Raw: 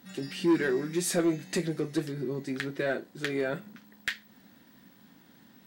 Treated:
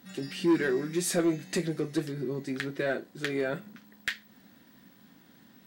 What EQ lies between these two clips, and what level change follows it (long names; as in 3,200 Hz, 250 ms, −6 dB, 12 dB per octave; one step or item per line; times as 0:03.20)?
notch filter 890 Hz, Q 22
0.0 dB